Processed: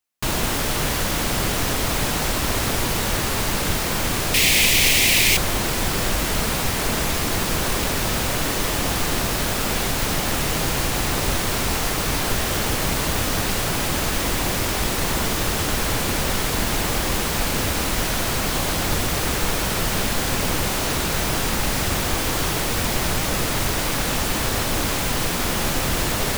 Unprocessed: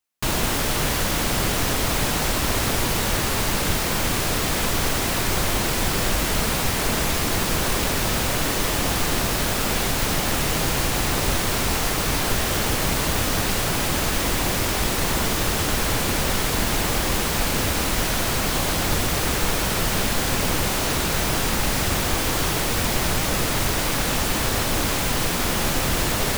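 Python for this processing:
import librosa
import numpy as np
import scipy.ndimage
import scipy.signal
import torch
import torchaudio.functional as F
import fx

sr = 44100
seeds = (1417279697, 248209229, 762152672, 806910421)

y = fx.high_shelf_res(x, sr, hz=1800.0, db=8.0, q=3.0, at=(4.34, 5.37))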